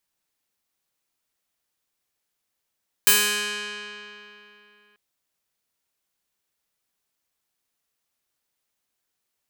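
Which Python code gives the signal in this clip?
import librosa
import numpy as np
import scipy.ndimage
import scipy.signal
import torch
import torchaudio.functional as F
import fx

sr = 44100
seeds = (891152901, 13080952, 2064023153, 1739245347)

y = fx.pluck(sr, length_s=1.89, note=56, decay_s=3.11, pick=0.31, brightness='bright')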